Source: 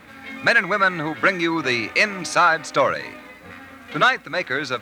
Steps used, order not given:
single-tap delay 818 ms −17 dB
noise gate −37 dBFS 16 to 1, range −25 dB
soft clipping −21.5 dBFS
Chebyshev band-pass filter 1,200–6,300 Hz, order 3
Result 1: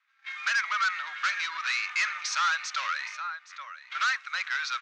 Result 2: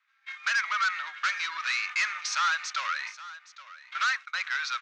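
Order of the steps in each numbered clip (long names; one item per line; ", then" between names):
noise gate, then single-tap delay, then soft clipping, then Chebyshev band-pass filter
soft clipping, then Chebyshev band-pass filter, then noise gate, then single-tap delay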